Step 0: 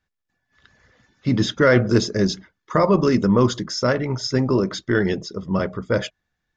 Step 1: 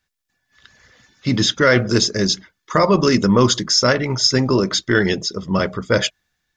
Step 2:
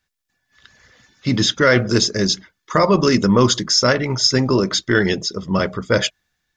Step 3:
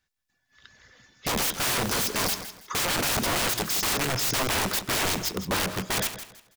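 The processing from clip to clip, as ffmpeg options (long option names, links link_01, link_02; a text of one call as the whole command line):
ffmpeg -i in.wav -af "highshelf=frequency=2100:gain=11.5,dynaudnorm=framelen=320:gausssize=5:maxgain=11.5dB,volume=-1dB" out.wav
ffmpeg -i in.wav -af anull out.wav
ffmpeg -i in.wav -filter_complex "[0:a]aeval=exprs='(mod(7.08*val(0)+1,2)-1)/7.08':channel_layout=same,asplit=2[link_01][link_02];[link_02]aecho=0:1:163|326|489:0.251|0.0678|0.0183[link_03];[link_01][link_03]amix=inputs=2:normalize=0,volume=-4dB" out.wav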